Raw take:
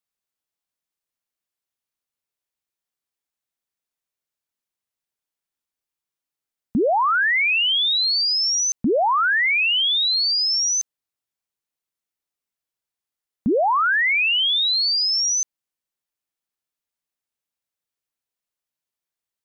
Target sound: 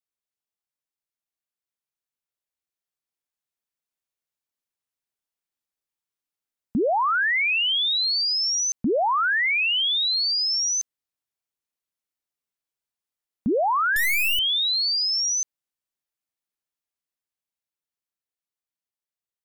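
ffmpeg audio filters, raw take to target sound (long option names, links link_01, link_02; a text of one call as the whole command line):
ffmpeg -i in.wav -filter_complex "[0:a]asettb=1/sr,asplit=3[link_01][link_02][link_03];[link_01]atrim=end=13.964[link_04];[link_02]atrim=start=13.96:end=14.39,asetpts=PTS-STARTPTS,afade=type=in:duration=0.004:curve=qsin,afade=type=out:start_time=0.426:duration=0.004:curve=qsin,aeval=exprs='0.168*(cos(1*acos(clip(val(0)/0.168,-1,1)))-cos(1*PI/2))+0.0422*(cos(7*acos(clip(val(0)/0.168,-1,1)))-cos(7*PI/2))+0.0422*(cos(8*acos(clip(val(0)/0.168,-1,1)))-cos(8*PI/2))':channel_layout=same[link_05];[link_03]atrim=start=14.386[link_06];[link_04][link_05]acrossfade=duration=0.004:curve1=hsin:curve2=qsin[link_07];[link_07][link_06]acrossfade=duration=0.004:curve1=qsin:curve2=hsin,dynaudnorm=framelen=430:gausssize=13:maxgain=4dB,volume=-7dB" out.wav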